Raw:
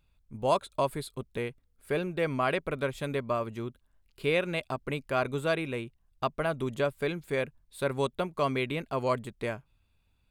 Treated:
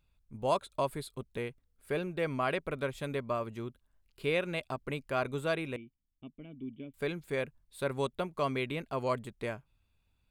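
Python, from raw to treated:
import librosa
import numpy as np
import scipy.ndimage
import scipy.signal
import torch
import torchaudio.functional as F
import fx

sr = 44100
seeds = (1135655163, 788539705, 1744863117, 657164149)

y = fx.formant_cascade(x, sr, vowel='i', at=(5.76, 6.94))
y = y * librosa.db_to_amplitude(-3.5)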